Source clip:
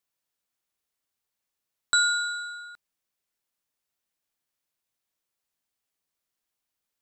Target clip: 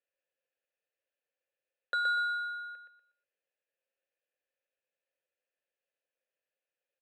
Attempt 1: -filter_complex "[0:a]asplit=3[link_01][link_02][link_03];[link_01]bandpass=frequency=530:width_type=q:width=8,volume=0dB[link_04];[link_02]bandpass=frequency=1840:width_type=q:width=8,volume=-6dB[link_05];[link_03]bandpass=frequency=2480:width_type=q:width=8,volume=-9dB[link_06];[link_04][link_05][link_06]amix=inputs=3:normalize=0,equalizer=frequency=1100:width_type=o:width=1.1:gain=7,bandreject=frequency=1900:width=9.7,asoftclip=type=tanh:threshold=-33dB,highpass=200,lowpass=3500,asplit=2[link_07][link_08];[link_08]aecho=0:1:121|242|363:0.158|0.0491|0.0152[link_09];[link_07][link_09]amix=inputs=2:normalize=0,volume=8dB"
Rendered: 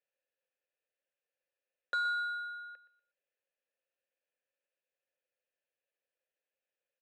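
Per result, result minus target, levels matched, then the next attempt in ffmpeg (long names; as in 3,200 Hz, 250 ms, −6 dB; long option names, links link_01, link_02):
soft clipping: distortion +13 dB; echo-to-direct −10 dB
-filter_complex "[0:a]asplit=3[link_01][link_02][link_03];[link_01]bandpass=frequency=530:width_type=q:width=8,volume=0dB[link_04];[link_02]bandpass=frequency=1840:width_type=q:width=8,volume=-6dB[link_05];[link_03]bandpass=frequency=2480:width_type=q:width=8,volume=-9dB[link_06];[link_04][link_05][link_06]amix=inputs=3:normalize=0,equalizer=frequency=1100:width_type=o:width=1.1:gain=7,bandreject=frequency=1900:width=9.7,asoftclip=type=tanh:threshold=-25.5dB,highpass=200,lowpass=3500,asplit=2[link_07][link_08];[link_08]aecho=0:1:121|242|363:0.158|0.0491|0.0152[link_09];[link_07][link_09]amix=inputs=2:normalize=0,volume=8dB"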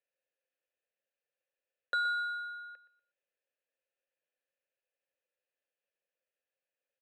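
echo-to-direct −10 dB
-filter_complex "[0:a]asplit=3[link_01][link_02][link_03];[link_01]bandpass=frequency=530:width_type=q:width=8,volume=0dB[link_04];[link_02]bandpass=frequency=1840:width_type=q:width=8,volume=-6dB[link_05];[link_03]bandpass=frequency=2480:width_type=q:width=8,volume=-9dB[link_06];[link_04][link_05][link_06]amix=inputs=3:normalize=0,equalizer=frequency=1100:width_type=o:width=1.1:gain=7,bandreject=frequency=1900:width=9.7,asoftclip=type=tanh:threshold=-25.5dB,highpass=200,lowpass=3500,asplit=2[link_07][link_08];[link_08]aecho=0:1:121|242|363|484:0.501|0.155|0.0482|0.0149[link_09];[link_07][link_09]amix=inputs=2:normalize=0,volume=8dB"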